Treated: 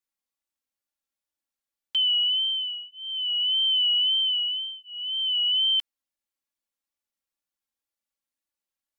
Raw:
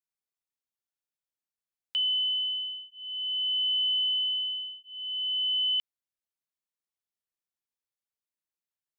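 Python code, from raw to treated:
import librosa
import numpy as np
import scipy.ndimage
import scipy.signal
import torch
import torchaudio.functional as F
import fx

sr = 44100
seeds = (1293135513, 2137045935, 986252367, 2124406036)

y = x + 0.97 * np.pad(x, (int(3.6 * sr / 1000.0), 0))[:len(x)]
y = fx.wow_flutter(y, sr, seeds[0], rate_hz=2.1, depth_cents=59.0)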